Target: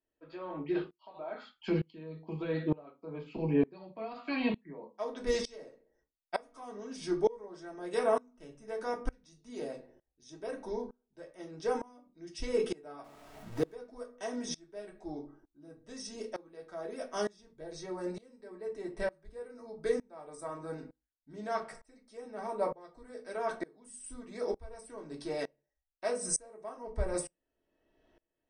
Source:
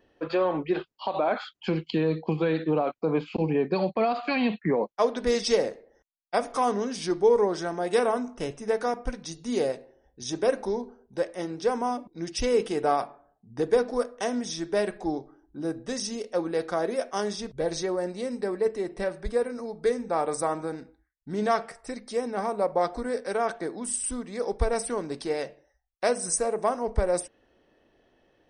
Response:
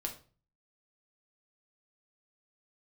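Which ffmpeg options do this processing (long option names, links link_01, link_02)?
-filter_complex "[0:a]asettb=1/sr,asplit=3[link_01][link_02][link_03];[link_01]atrim=end=13.044[link_04];[link_02]atrim=start=13.04:end=13.73,asetpts=PTS-STARTPTS,afade=type=in:duration=0.004:curve=qsin,afade=type=out:start_time=0.686:duration=0.004:curve=qsin,aeval=exprs='val(0)+0.5*0.0158*sgn(val(0))':channel_layout=same[link_05];[link_03]atrim=start=13.726[link_06];[link_04][link_05]acrossfade=duration=0.004:curve1=hsin:curve2=qsin[link_07];[link_07][link_06]acrossfade=duration=0.004:curve1=qsin:curve2=hsin[link_08];[1:a]atrim=start_sample=2205,afade=type=out:start_time=0.38:duration=0.01,atrim=end_sample=17199,asetrate=83790,aresample=44100[link_09];[link_08][link_09]afir=irnorm=-1:irlink=0,aeval=exprs='val(0)*pow(10,-26*if(lt(mod(-1.1*n/s,1),2*abs(-1.1)/1000),1-mod(-1.1*n/s,1)/(2*abs(-1.1)/1000),(mod(-1.1*n/s,1)-2*abs(-1.1)/1000)/(1-2*abs(-1.1)/1000))/20)':channel_layout=same,volume=2.5dB"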